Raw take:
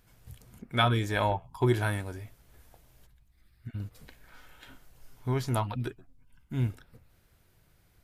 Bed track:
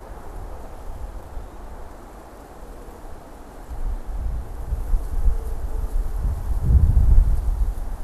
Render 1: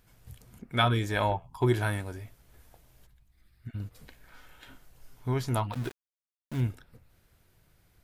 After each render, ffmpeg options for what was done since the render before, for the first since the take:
-filter_complex "[0:a]asplit=3[s0][s1][s2];[s0]afade=t=out:st=5.72:d=0.02[s3];[s1]aeval=exprs='val(0)*gte(abs(val(0)),0.0119)':c=same,afade=t=in:st=5.72:d=0.02,afade=t=out:st=6.6:d=0.02[s4];[s2]afade=t=in:st=6.6:d=0.02[s5];[s3][s4][s5]amix=inputs=3:normalize=0"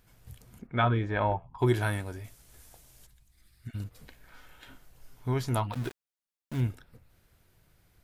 -filter_complex "[0:a]asplit=3[s0][s1][s2];[s0]afade=t=out:st=0.66:d=0.02[s3];[s1]lowpass=2000,afade=t=in:st=0.66:d=0.02,afade=t=out:st=1.58:d=0.02[s4];[s2]afade=t=in:st=1.58:d=0.02[s5];[s3][s4][s5]amix=inputs=3:normalize=0,asettb=1/sr,asplit=3[s6][s7][s8];[s6]atrim=end=2.244[s9];[s7]atrim=start=2.24:end=3.84,asetpts=PTS-STARTPTS,afade=t=in:d=0.004:c=qsin,afade=t=out:st=1.596:d=0.004:c=qsin,equalizer=f=8200:w=0.49:g=11.5[s10];[s8]atrim=start=3.836[s11];[s9][s10]acrossfade=d=0.004:c1=hsin:c2=qsin[s12];[s12][s11]acrossfade=d=0.004:c1=qsin:c2=hsin"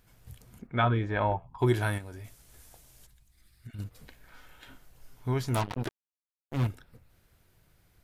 -filter_complex "[0:a]asettb=1/sr,asplit=3[s0][s1][s2];[s0]atrim=end=1.984[s3];[s1]atrim=start=1.98:end=3.79,asetpts=PTS-STARTPTS,afade=t=in:d=0.004:c=qsin,afade=t=out:st=1.806:d=0.004:c=qsin,acompressor=threshold=0.0112:ratio=5:attack=3.2:release=140:knee=1:detection=peak[s4];[s2]atrim=start=3.786[s5];[s3][s4]acrossfade=d=0.004:c1=hsin:c2=qsin[s6];[s6][s5]acrossfade=d=0.004:c1=qsin:c2=hsin,asettb=1/sr,asplit=3[s7][s8][s9];[s7]atrim=end=5.544[s10];[s8]atrim=start=5.54:end=6.67,asetpts=PTS-STARTPTS,afade=t=in:d=0.004:c=qsin,afade=t=out:st=1.126:d=0.004:c=qsin,acrusher=bits=4:mix=0:aa=0.5[s11];[s9]atrim=start=6.666[s12];[s10][s11]acrossfade=d=0.004:c1=hsin:c2=qsin[s13];[s13][s12]acrossfade=d=0.004:c1=qsin:c2=hsin"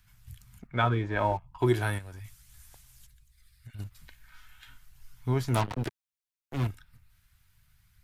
-filter_complex "[0:a]aphaser=in_gain=1:out_gain=1:delay=3.3:decay=0.22:speed=0.36:type=sinusoidal,acrossover=split=180|990|2600[s0][s1][s2][s3];[s1]aeval=exprs='sgn(val(0))*max(abs(val(0))-0.00266,0)':c=same[s4];[s0][s4][s2][s3]amix=inputs=4:normalize=0"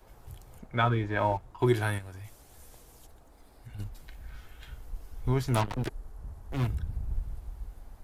-filter_complex "[1:a]volume=0.119[s0];[0:a][s0]amix=inputs=2:normalize=0"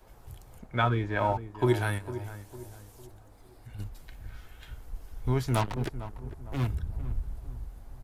-filter_complex "[0:a]asplit=2[s0][s1];[s1]adelay=453,lowpass=f=1200:p=1,volume=0.237,asplit=2[s2][s3];[s3]adelay=453,lowpass=f=1200:p=1,volume=0.43,asplit=2[s4][s5];[s5]adelay=453,lowpass=f=1200:p=1,volume=0.43,asplit=2[s6][s7];[s7]adelay=453,lowpass=f=1200:p=1,volume=0.43[s8];[s0][s2][s4][s6][s8]amix=inputs=5:normalize=0"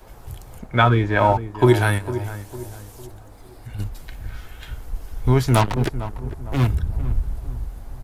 -af "volume=3.35,alimiter=limit=0.708:level=0:latency=1"

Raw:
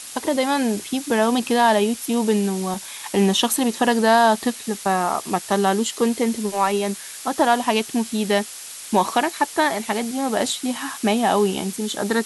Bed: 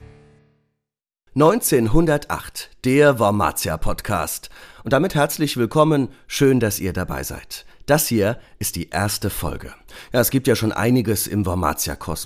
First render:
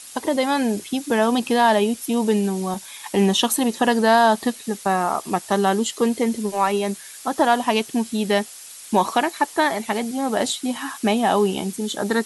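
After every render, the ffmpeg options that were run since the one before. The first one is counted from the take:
-af "afftdn=nr=6:nf=-37"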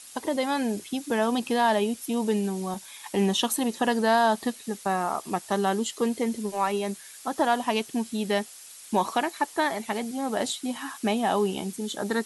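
-af "volume=0.501"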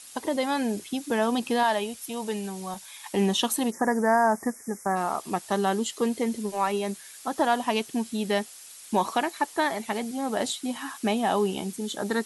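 -filter_complex "[0:a]asettb=1/sr,asplit=3[s0][s1][s2];[s0]atrim=end=1.634[s3];[s1]atrim=start=1.63:end=3.13,asetpts=PTS-STARTPTS,afade=t=in:d=0.004:c=qsin,afade=t=out:st=1.496:d=0.004:c=qsin,equalizer=f=280:t=o:w=1.2:g=-10.5[s4];[s2]atrim=start=3.126[s5];[s3][s4]acrossfade=d=0.004:c1=hsin:c2=qsin[s6];[s6][s5]acrossfade=d=0.004:c1=qsin:c2=hsin,asplit=3[s7][s8][s9];[s7]afade=t=out:st=3.7:d=0.02[s10];[s8]asuperstop=centerf=3400:order=12:qfactor=1.1,afade=t=in:st=3.7:d=0.02,afade=t=out:st=4.95:d=0.02[s11];[s9]afade=t=in:st=4.95:d=0.02[s12];[s10][s11][s12]amix=inputs=3:normalize=0"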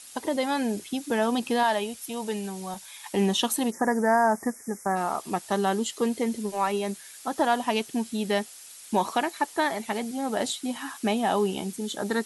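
-af "bandreject=f=1100:w=25"

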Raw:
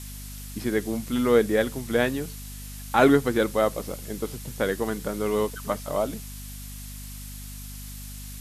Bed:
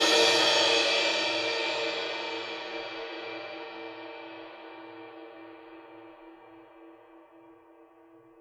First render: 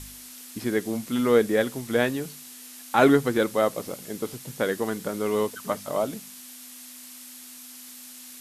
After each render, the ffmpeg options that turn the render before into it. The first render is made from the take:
-af "bandreject=f=50:t=h:w=4,bandreject=f=100:t=h:w=4,bandreject=f=150:t=h:w=4,bandreject=f=200:t=h:w=4"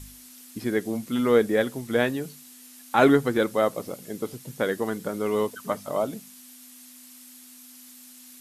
-af "afftdn=nr=6:nf=-44"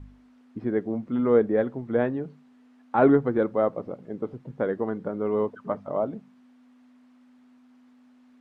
-af "lowpass=1100"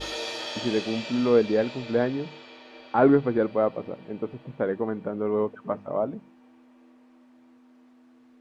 -filter_complex "[1:a]volume=0.282[s0];[0:a][s0]amix=inputs=2:normalize=0"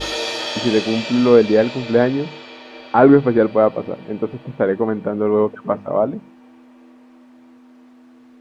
-af "volume=2.82,alimiter=limit=0.891:level=0:latency=1"

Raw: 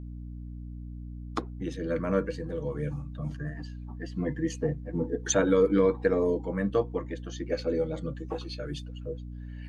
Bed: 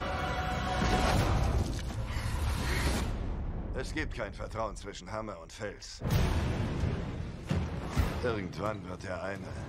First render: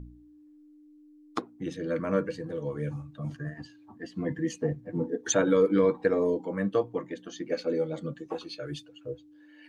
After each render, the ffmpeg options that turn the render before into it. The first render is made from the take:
-af "bandreject=f=60:t=h:w=4,bandreject=f=120:t=h:w=4,bandreject=f=180:t=h:w=4,bandreject=f=240:t=h:w=4"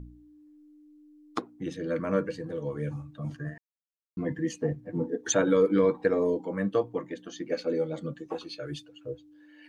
-filter_complex "[0:a]asplit=3[s0][s1][s2];[s0]atrim=end=3.58,asetpts=PTS-STARTPTS,afade=t=out:st=3.576:d=0.004:c=hsin[s3];[s1]atrim=start=3.58:end=4.17,asetpts=PTS-STARTPTS,volume=0[s4];[s2]atrim=start=4.17,asetpts=PTS-STARTPTS,afade=t=in:d=0.004:c=hsin[s5];[s3][s4][s5]concat=n=3:v=0:a=1"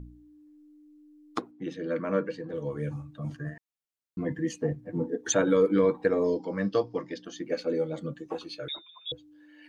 -filter_complex "[0:a]asettb=1/sr,asplit=3[s0][s1][s2];[s0]atrim=end=1.514[s3];[s1]atrim=start=1.51:end=2.54,asetpts=PTS-STARTPTS,afade=t=in:d=0.004:c=qsin,afade=t=out:st=1.026:d=0.004:c=qsin,highpass=170,lowpass=4800[s4];[s2]atrim=start=2.536[s5];[s3][s4]acrossfade=d=0.004:c1=hsin:c2=qsin[s6];[s6][s5]acrossfade=d=0.004:c1=qsin:c2=hsin,asettb=1/sr,asplit=3[s7][s8][s9];[s7]atrim=end=6.244[s10];[s8]atrim=start=6.24:end=7.25,asetpts=PTS-STARTPTS,afade=t=in:d=0.004:c=qsin,afade=t=out:st=1.006:d=0.004:c=qsin,lowpass=f=5100:t=q:w=14[s11];[s9]atrim=start=7.246[s12];[s10][s11]acrossfade=d=0.004:c1=hsin:c2=qsin[s13];[s13][s12]acrossfade=d=0.004:c1=qsin:c2=hsin,asettb=1/sr,asplit=3[s14][s15][s16];[s14]atrim=end=8.684[s17];[s15]atrim=start=8.68:end=9.12,asetpts=PTS-STARTPTS,afade=t=in:d=0.004:c=qsin,afade=t=out:st=0.436:d=0.004:c=qsin,lowpass=f=3300:t=q:w=0.5098,lowpass=f=3300:t=q:w=0.6013,lowpass=f=3300:t=q:w=0.9,lowpass=f=3300:t=q:w=2.563,afreqshift=-3900[s18];[s16]atrim=start=9.116[s19];[s17][s18]acrossfade=d=0.004:c1=hsin:c2=qsin[s20];[s20][s19]acrossfade=d=0.004:c1=qsin:c2=hsin"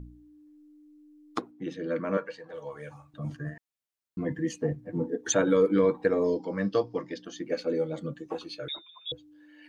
-filter_complex "[0:a]asettb=1/sr,asplit=3[s0][s1][s2];[s0]atrim=end=2.174[s3];[s1]atrim=start=2.17:end=3.14,asetpts=PTS-STARTPTS,afade=t=in:d=0.004:c=qsin,afade=t=out:st=0.966:d=0.004:c=qsin,lowshelf=f=470:t=q:w=1.5:g=-13[s4];[s2]atrim=start=3.136[s5];[s3][s4]acrossfade=d=0.004:c1=hsin:c2=qsin[s6];[s6][s5]acrossfade=d=0.004:c1=qsin:c2=hsin"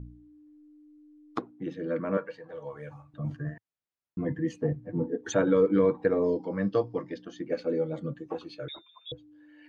-af "lowpass=f=1900:p=1,equalizer=f=110:t=o:w=0.77:g=4.5"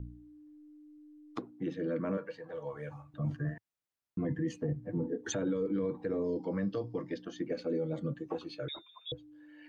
-filter_complex "[0:a]acrossover=split=430|3000[s0][s1][s2];[s1]acompressor=threshold=0.01:ratio=2[s3];[s0][s3][s2]amix=inputs=3:normalize=0,alimiter=level_in=1.12:limit=0.0631:level=0:latency=1:release=45,volume=0.891"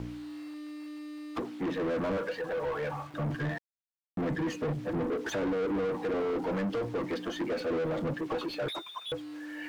-filter_complex "[0:a]acrusher=bits=10:mix=0:aa=0.000001,asplit=2[s0][s1];[s1]highpass=f=720:p=1,volume=25.1,asoftclip=type=tanh:threshold=0.0596[s2];[s0][s2]amix=inputs=2:normalize=0,lowpass=f=1600:p=1,volume=0.501"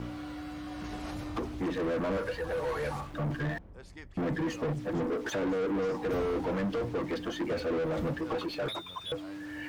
-filter_complex "[1:a]volume=0.211[s0];[0:a][s0]amix=inputs=2:normalize=0"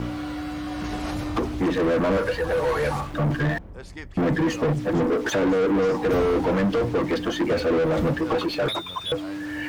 -af "volume=2.99"

